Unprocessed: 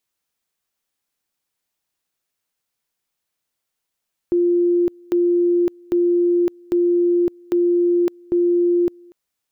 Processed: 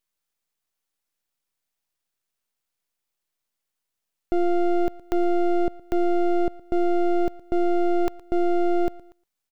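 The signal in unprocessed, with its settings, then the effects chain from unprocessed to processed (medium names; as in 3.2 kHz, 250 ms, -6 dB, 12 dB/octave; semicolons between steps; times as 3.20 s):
two-level tone 349 Hz -13.5 dBFS, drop 28.5 dB, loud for 0.56 s, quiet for 0.24 s, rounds 6
half-wave rectifier; delay 116 ms -20.5 dB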